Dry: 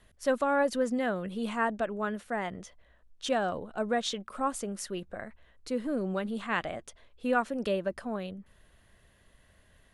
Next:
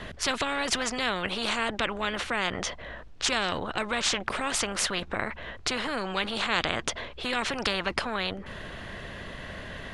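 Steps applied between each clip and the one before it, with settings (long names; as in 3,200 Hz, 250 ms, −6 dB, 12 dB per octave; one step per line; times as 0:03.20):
low-pass filter 4,200 Hz 12 dB per octave
every bin compressed towards the loudest bin 4 to 1
level +8.5 dB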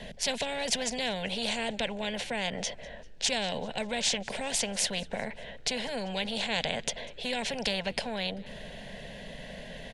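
phaser with its sweep stopped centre 330 Hz, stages 6
echo with shifted repeats 195 ms, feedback 53%, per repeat −80 Hz, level −24 dB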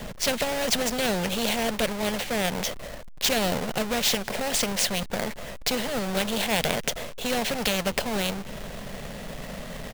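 each half-wave held at its own peak
level +1.5 dB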